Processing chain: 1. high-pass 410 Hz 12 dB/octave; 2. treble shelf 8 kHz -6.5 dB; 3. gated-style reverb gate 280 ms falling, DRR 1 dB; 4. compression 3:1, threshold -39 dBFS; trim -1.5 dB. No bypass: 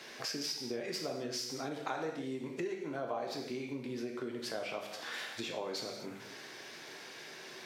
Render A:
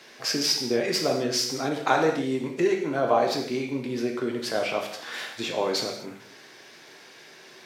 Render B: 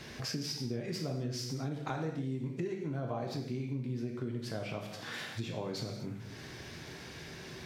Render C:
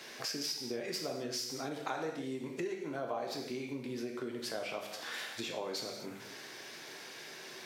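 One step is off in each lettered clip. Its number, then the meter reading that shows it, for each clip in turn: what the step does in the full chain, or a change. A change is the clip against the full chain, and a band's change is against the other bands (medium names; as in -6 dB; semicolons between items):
4, mean gain reduction 9.0 dB; 1, 125 Hz band +16.5 dB; 2, 8 kHz band +1.5 dB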